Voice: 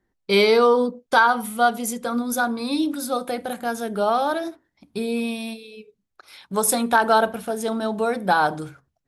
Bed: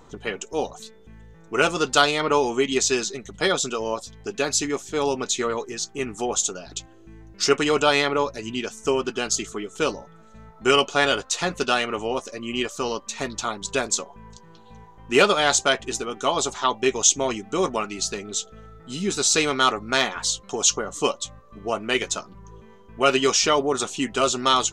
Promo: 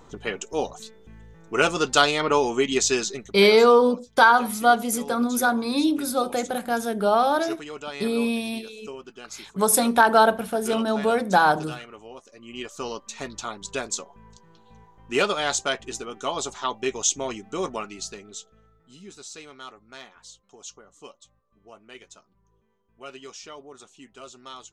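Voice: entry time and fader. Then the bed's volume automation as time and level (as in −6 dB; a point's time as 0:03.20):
3.05 s, +1.0 dB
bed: 0:03.19 −0.5 dB
0:03.49 −16.5 dB
0:12.24 −16.5 dB
0:12.80 −5.5 dB
0:17.80 −5.5 dB
0:19.38 −22 dB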